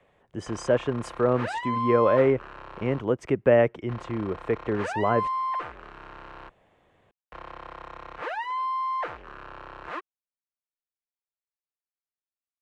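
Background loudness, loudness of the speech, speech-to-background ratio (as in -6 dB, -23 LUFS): -33.0 LUFS, -25.5 LUFS, 7.5 dB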